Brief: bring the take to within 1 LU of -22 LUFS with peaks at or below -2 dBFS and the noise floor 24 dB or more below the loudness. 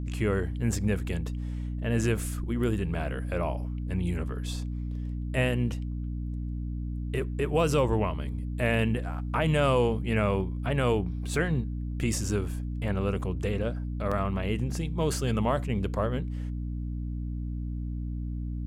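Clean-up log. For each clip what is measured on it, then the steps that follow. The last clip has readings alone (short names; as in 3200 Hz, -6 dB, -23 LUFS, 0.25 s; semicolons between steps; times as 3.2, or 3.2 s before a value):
dropouts 1; longest dropout 5.4 ms; hum 60 Hz; harmonics up to 300 Hz; hum level -30 dBFS; loudness -30.0 LUFS; peak -13.0 dBFS; loudness target -22.0 LUFS
-> interpolate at 14.11, 5.4 ms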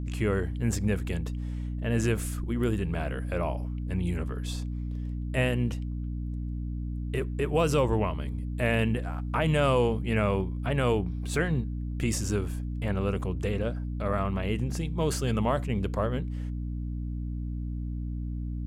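dropouts 0; hum 60 Hz; harmonics up to 300 Hz; hum level -30 dBFS
-> de-hum 60 Hz, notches 5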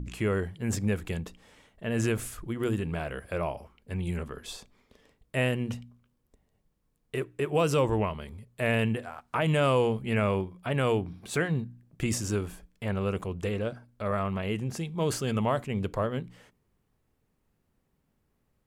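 hum none; loudness -30.0 LUFS; peak -14.5 dBFS; loudness target -22.0 LUFS
-> gain +8 dB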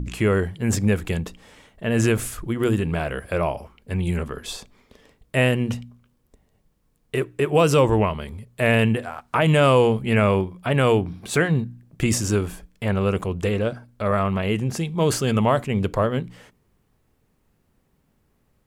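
loudness -22.0 LUFS; peak -6.5 dBFS; noise floor -66 dBFS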